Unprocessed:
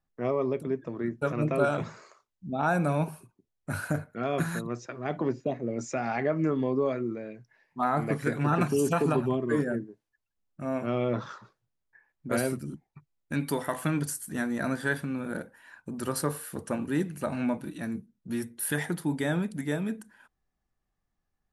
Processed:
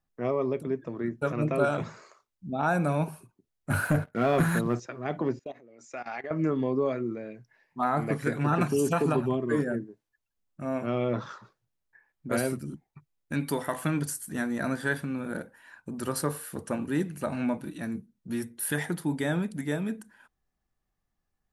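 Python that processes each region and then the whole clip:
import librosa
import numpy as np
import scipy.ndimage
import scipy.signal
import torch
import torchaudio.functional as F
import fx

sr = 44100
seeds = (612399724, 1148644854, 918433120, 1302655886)

y = fx.chain(x, sr, fx.peak_eq(hz=5500.0, db=-8.0, octaves=1.3),
    fx.leveller(passes=2), at=(3.7, 4.8))
y = fx.chain(y, sr, fx.highpass(hz=800.0, slope=6),
    fx.level_steps(step_db=18), at=(5.39, 6.31))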